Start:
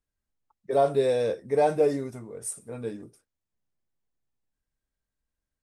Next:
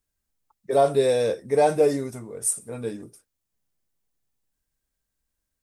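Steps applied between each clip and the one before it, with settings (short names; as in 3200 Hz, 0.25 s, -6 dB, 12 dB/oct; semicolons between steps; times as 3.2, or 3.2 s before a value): high shelf 5300 Hz +9 dB; gain +3 dB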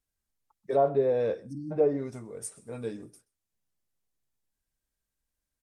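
treble ducked by the level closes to 1200 Hz, closed at -16.5 dBFS; spectral delete 1.42–1.71, 330–4200 Hz; outdoor echo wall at 22 m, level -24 dB; gain -4.5 dB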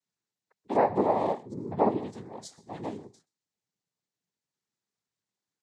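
noise vocoder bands 6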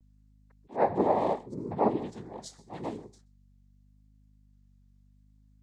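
hum 50 Hz, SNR 28 dB; vibrato 0.78 Hz 60 cents; attack slew limiter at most 260 dB/s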